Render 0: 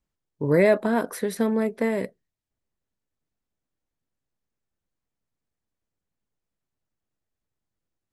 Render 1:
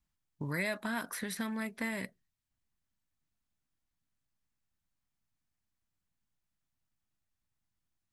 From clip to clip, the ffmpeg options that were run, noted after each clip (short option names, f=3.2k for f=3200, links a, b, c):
-filter_complex "[0:a]equalizer=f=460:t=o:w=0.95:g=-13.5,acrossover=split=1300|3400[a][b][c];[a]acompressor=threshold=-37dB:ratio=4[d];[b]acompressor=threshold=-37dB:ratio=4[e];[c]acompressor=threshold=-40dB:ratio=4[f];[d][e][f]amix=inputs=3:normalize=0"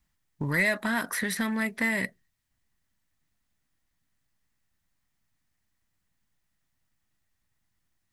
-filter_complex "[0:a]asplit=2[a][b];[b]asoftclip=type=hard:threshold=-32.5dB,volume=-4dB[c];[a][c]amix=inputs=2:normalize=0,equalizer=f=1.9k:w=6.6:g=7.5,volume=3.5dB"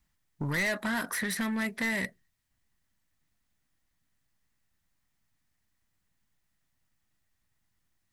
-af "asoftclip=type=tanh:threshold=-25dB"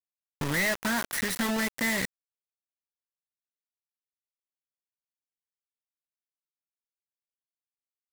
-af "acrusher=bits=4:mix=0:aa=0.000001"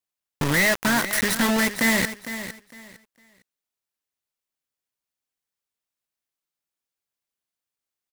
-af "aecho=1:1:456|912|1368:0.251|0.0578|0.0133,volume=7dB"